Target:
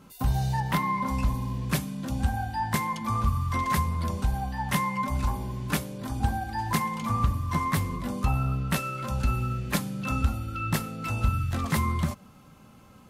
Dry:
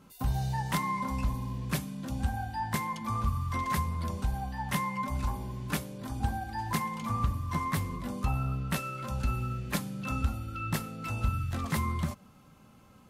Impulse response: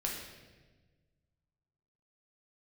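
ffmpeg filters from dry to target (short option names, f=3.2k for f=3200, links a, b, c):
-filter_complex "[0:a]asettb=1/sr,asplit=3[a][b][c];[a]atrim=end=0.604[d];[b]atrim=start=0.6:end=1.06,asetpts=PTS-STARTPTS,afade=t=in:d=0.004:c=qsin,afade=t=out:st=0.456:d=0.004:c=qsin,equalizer=f=7.8k:w=0.81:g=-9[e];[c]atrim=start=1.056[f];[d][e]acrossfade=d=0.004:c1=hsin:c2=qsin[g];[g][f]acrossfade=d=0.004:c1=qsin:c2=hsin,volume=4.5dB"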